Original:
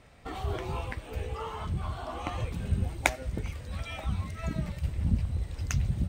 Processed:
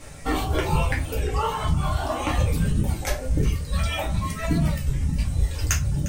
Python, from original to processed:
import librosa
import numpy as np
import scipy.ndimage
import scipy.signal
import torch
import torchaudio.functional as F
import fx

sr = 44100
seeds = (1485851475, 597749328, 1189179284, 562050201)

p1 = fx.dereverb_blind(x, sr, rt60_s=1.8)
p2 = fx.over_compress(p1, sr, threshold_db=-34.0, ratio=-1.0)
p3 = fx.high_shelf(p2, sr, hz=6800.0, db=11.5)
p4 = fx.dmg_noise_band(p3, sr, seeds[0], low_hz=5100.0, high_hz=10000.0, level_db=-61.0)
p5 = p4 + fx.echo_split(p4, sr, split_hz=1300.0, low_ms=104, high_ms=353, feedback_pct=52, wet_db=-16.0, dry=0)
p6 = fx.room_shoebox(p5, sr, seeds[1], volume_m3=130.0, walls='furnished', distance_m=2.3)
p7 = fx.record_warp(p6, sr, rpm=33.33, depth_cents=100.0)
y = p7 * librosa.db_to_amplitude(5.0)